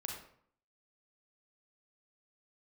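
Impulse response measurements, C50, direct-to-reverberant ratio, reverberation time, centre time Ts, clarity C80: 3.0 dB, 0.0 dB, 0.60 s, 39 ms, 6.5 dB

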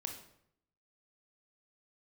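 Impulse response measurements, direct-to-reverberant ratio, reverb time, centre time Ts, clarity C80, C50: 3.0 dB, 0.70 s, 22 ms, 10.5 dB, 7.0 dB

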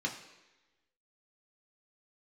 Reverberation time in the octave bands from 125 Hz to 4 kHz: 0.85, 1.0, 1.1, 1.1, 1.2, 1.1 seconds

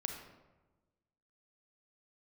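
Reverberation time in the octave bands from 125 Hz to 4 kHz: 1.5, 1.4, 1.3, 1.1, 0.90, 0.65 seconds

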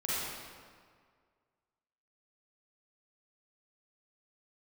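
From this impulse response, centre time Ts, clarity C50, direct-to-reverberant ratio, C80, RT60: 142 ms, −6.0 dB, −9.0 dB, −2.0 dB, 1.9 s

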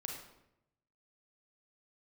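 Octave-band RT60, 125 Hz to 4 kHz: 1.2, 1.0, 0.90, 0.75, 0.70, 0.60 seconds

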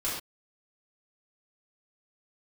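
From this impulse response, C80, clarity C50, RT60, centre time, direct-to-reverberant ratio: 5.0 dB, 1.5 dB, non-exponential decay, 50 ms, −10.0 dB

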